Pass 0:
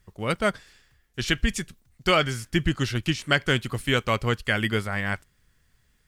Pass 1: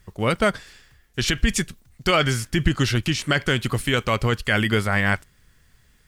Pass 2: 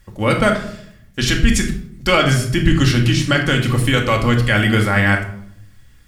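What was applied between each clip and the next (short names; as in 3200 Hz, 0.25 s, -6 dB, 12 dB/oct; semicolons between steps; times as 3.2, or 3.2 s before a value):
limiter -16 dBFS, peak gain reduction 9.5 dB; gain +7.5 dB
reverb RT60 0.70 s, pre-delay 4 ms, DRR 1.5 dB; gain +2.5 dB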